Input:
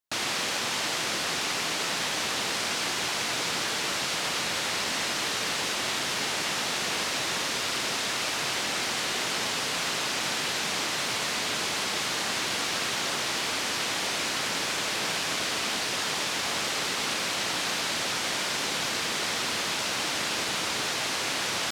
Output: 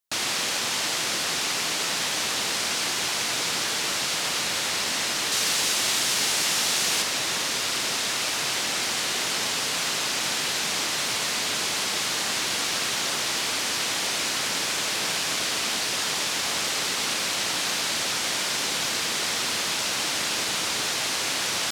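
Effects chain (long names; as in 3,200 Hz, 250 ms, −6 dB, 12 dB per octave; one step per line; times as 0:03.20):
high-shelf EQ 4,000 Hz +6.5 dB, from 0:05.32 +12 dB, from 0:07.02 +6.5 dB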